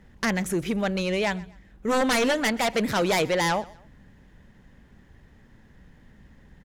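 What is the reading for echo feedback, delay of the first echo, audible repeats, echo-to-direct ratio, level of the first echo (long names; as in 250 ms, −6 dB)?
35%, 126 ms, 2, −21.5 dB, −22.0 dB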